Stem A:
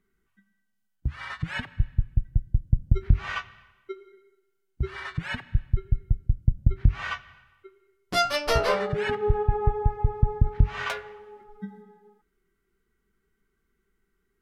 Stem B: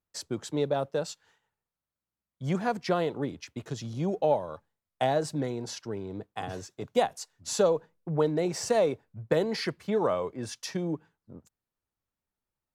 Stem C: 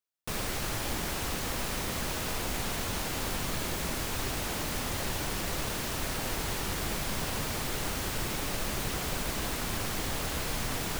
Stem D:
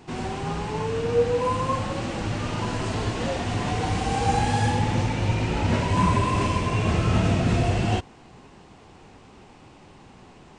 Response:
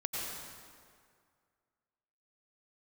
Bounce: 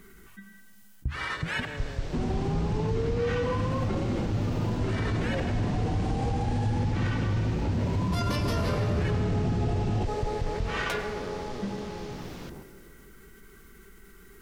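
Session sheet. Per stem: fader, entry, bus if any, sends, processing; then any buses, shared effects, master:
-9.5 dB, 0.00 s, bus A, send -15 dB, high shelf 6000 Hz +6.5 dB; fast leveller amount 50%
-1.5 dB, 1.15 s, bus A, no send, time blur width 1.36 s
-11.5 dB, 1.50 s, no bus, no send, LPF 6000 Hz 24 dB/oct
0.0 dB, 2.05 s, bus A, no send, tilt shelf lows +8.5 dB, about 680 Hz
bus A: 0.0 dB, limiter -21 dBFS, peak gain reduction 16.5 dB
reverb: on, RT60 2.1 s, pre-delay 83 ms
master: dry

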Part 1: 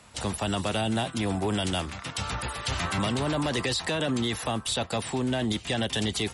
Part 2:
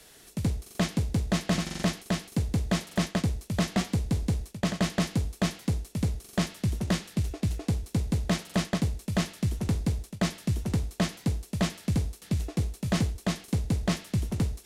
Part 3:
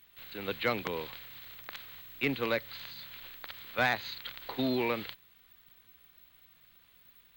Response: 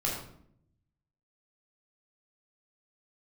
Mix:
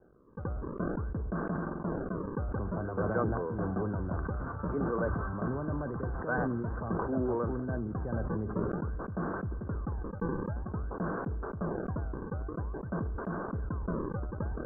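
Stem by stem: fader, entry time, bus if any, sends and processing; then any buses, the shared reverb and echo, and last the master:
-10.0 dB, 2.35 s, send -21 dB, low shelf 120 Hz +10 dB
-5.5 dB, 0.00 s, no send, decimation with a swept rate 37×, swing 160% 0.51 Hz
0.0 dB, 2.50 s, no send, dry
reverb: on, RT60 0.65 s, pre-delay 11 ms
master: rippled Chebyshev low-pass 1600 Hz, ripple 6 dB; sustainer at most 25 dB/s

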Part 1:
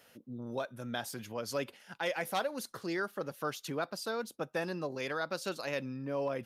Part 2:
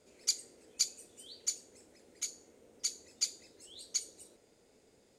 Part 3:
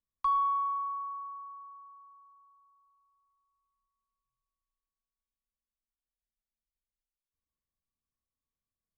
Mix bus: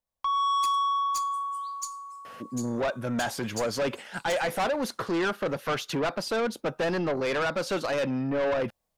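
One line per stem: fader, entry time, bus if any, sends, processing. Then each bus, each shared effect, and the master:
+0.5 dB, 2.25 s, no send, low shelf 320 Hz +5.5 dB; overdrive pedal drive 11 dB, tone 1500 Hz, clips at -21 dBFS
-11.5 dB, 0.35 s, no send, differentiator
+1.0 dB, 0.00 s, no send, band shelf 680 Hz +11 dB 1.1 oct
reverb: off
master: AGC gain up to 11.5 dB; soft clip -23.5 dBFS, distortion -9 dB

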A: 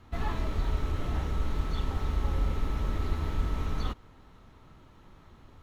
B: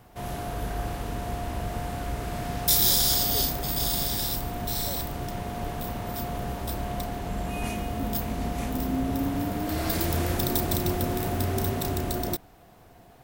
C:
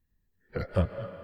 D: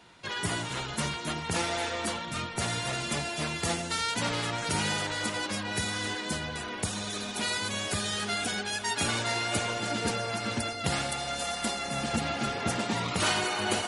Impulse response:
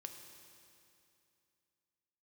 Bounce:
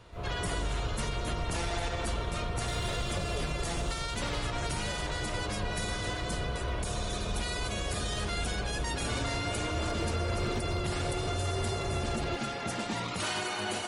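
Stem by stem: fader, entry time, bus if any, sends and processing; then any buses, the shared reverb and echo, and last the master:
-13.5 dB, 0.00 s, no send, dry
+1.0 dB, 0.00 s, no send, Bessel low-pass 1600 Hz, order 2; fixed phaser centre 1200 Hz, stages 8; overloaded stage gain 28 dB
-8.0 dB, 2.40 s, no send, dry
-6.0 dB, 0.00 s, send -4 dB, dry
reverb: on, RT60 2.6 s, pre-delay 3 ms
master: limiter -23 dBFS, peak gain reduction 6.5 dB

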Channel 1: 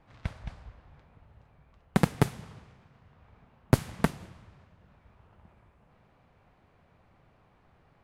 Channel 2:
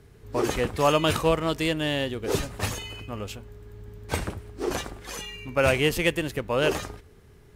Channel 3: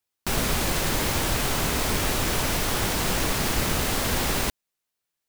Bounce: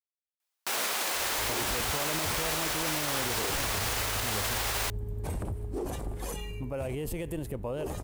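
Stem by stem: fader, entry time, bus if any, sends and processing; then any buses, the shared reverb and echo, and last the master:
off
0.0 dB, 1.15 s, bus A, no send, low shelf 100 Hz +8 dB; limiter -16 dBFS, peak gain reduction 7.5 dB; band shelf 2800 Hz -10.5 dB 2.7 oct
-1.0 dB, 0.40 s, no bus, no send, HPF 600 Hz 12 dB/oct
bus A: 0.0 dB, vocal rider within 4 dB 0.5 s; limiter -26 dBFS, peak gain reduction 11.5 dB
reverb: off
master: limiter -20.5 dBFS, peak gain reduction 5.5 dB

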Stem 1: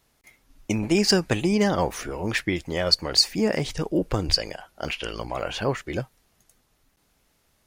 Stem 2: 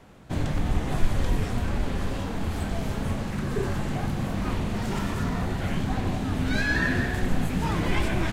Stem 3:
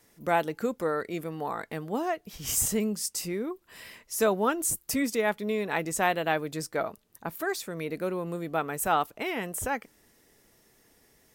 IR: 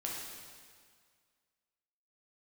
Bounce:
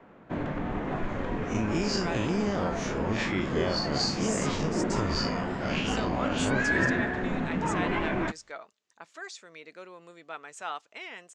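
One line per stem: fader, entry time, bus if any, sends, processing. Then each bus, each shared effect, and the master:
+2.5 dB, 0.85 s, no send, time blur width 0.1 s; compressor, threshold -28 dBFS, peak gain reduction 9.5 dB
+2.0 dB, 0.00 s, no send, three-band isolator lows -15 dB, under 180 Hz, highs -22 dB, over 2300 Hz
-4.5 dB, 1.75 s, no send, HPF 1400 Hz 6 dB/oct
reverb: off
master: elliptic low-pass 7200 Hz, stop band 80 dB; notch 790 Hz, Q 22

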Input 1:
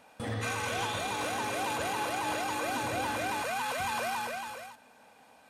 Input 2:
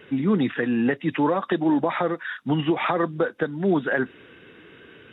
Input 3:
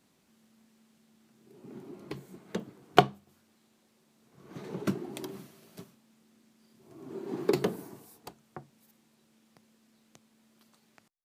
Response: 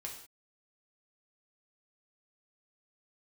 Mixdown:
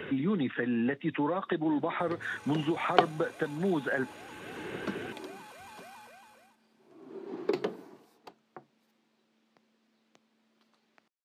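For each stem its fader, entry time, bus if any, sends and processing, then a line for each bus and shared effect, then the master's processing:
-17.0 dB, 1.80 s, no send, dry
-8.0 dB, 0.00 s, no send, three-band squash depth 70%
-2.5 dB, 0.00 s, no send, three-band isolator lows -17 dB, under 210 Hz, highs -18 dB, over 5100 Hz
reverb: off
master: dry

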